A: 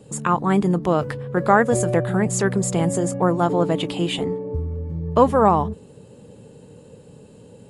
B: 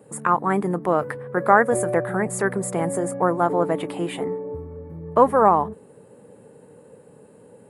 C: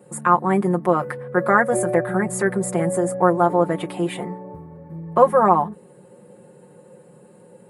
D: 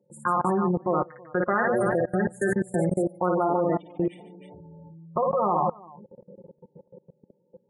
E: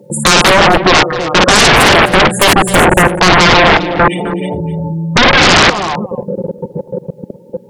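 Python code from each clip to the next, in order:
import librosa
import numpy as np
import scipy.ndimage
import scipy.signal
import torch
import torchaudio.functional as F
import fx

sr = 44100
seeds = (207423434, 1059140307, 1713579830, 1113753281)

y1 = fx.highpass(x, sr, hz=450.0, slope=6)
y1 = fx.band_shelf(y1, sr, hz=4400.0, db=-14.0, octaves=1.7)
y1 = y1 * librosa.db_to_amplitude(2.0)
y2 = y1 + 0.86 * np.pad(y1, (int(5.6 * sr / 1000.0), 0))[:len(y1)]
y2 = y2 * librosa.db_to_amplitude(-1.0)
y3 = fx.spec_gate(y2, sr, threshold_db=-15, keep='strong')
y3 = fx.echo_multitap(y3, sr, ms=(55, 147, 322), db=(-7.0, -13.5, -12.0))
y3 = fx.level_steps(y3, sr, step_db=23)
y4 = fx.fold_sine(y3, sr, drive_db=18, ceiling_db=-10.5)
y4 = y4 + 10.0 ** (-14.5 / 20.0) * np.pad(y4, (int(258 * sr / 1000.0), 0))[:len(y4)]
y4 = y4 * librosa.db_to_amplitude(7.0)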